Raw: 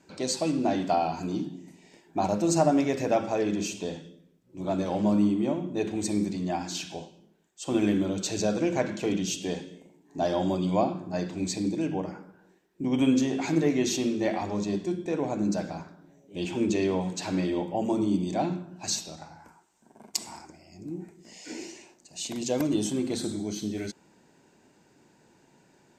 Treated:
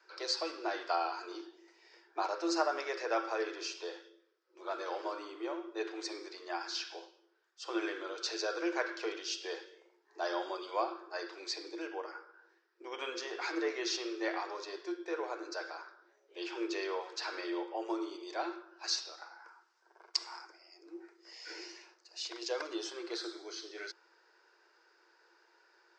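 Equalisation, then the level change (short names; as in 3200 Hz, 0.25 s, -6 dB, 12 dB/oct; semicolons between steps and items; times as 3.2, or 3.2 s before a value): rippled Chebyshev high-pass 330 Hz, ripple 6 dB; ladder low-pass 5400 Hz, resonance 70%; bell 1400 Hz +11.5 dB 1.1 oct; +5.0 dB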